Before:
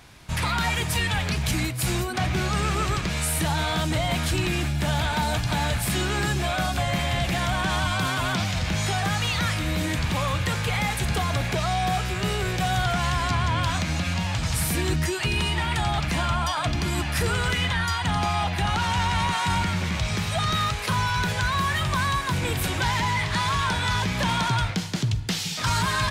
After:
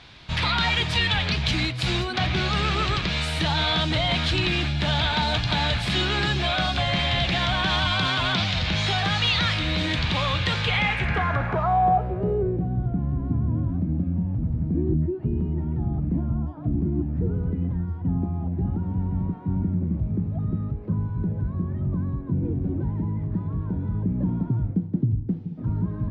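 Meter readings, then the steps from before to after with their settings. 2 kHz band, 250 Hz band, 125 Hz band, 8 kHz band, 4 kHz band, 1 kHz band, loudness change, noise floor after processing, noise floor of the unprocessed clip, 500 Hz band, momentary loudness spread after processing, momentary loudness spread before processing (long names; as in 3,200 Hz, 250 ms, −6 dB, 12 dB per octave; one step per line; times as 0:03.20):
−1.0 dB, +2.5 dB, +1.0 dB, −13.0 dB, +2.5 dB, −2.5 dB, +0.5 dB, −33 dBFS, −30 dBFS, 0.0 dB, 6 LU, 2 LU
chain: low-pass filter sweep 3,800 Hz → 280 Hz, 0:10.61–0:12.70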